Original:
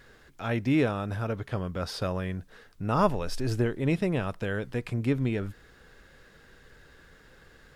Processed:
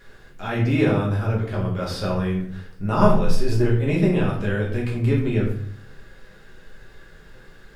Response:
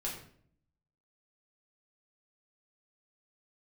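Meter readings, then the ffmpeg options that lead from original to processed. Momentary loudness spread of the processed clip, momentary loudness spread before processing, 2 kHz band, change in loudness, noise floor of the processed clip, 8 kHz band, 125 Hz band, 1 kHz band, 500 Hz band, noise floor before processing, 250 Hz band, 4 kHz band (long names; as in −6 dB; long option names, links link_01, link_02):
11 LU, 8 LU, +5.5 dB, +7.0 dB, −48 dBFS, +3.5 dB, +9.0 dB, +5.0 dB, +7.0 dB, −57 dBFS, +7.0 dB, +4.5 dB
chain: -filter_complex "[1:a]atrim=start_sample=2205[link_01];[0:a][link_01]afir=irnorm=-1:irlink=0,volume=3.5dB"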